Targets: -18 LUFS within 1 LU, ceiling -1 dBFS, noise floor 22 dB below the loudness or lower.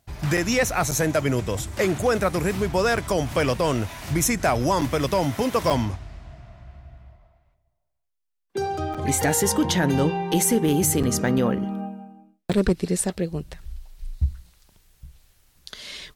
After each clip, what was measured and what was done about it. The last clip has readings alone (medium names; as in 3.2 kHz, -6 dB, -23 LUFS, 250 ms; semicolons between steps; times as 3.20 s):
clipped samples 0.1%; clipping level -12.5 dBFS; dropouts 8; longest dropout 6.2 ms; loudness -23.0 LUFS; peak level -12.5 dBFS; loudness target -18.0 LUFS
-> clip repair -12.5 dBFS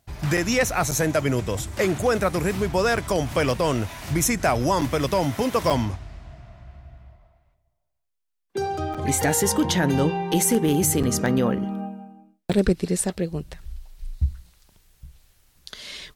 clipped samples 0.0%; dropouts 8; longest dropout 6.2 ms
-> interpolate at 0.37/0.91/2.97/4.81/5.70/8.94/11.03/12.53 s, 6.2 ms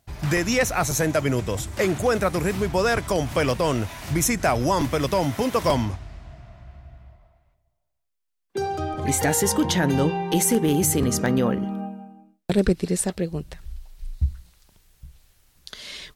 dropouts 0; loudness -23.0 LUFS; peak level -5.0 dBFS; loudness target -18.0 LUFS
-> trim +5 dB; peak limiter -1 dBFS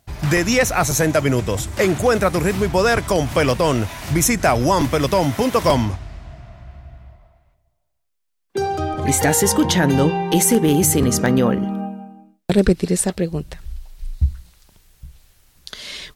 loudness -18.0 LUFS; peak level -1.0 dBFS; noise floor -71 dBFS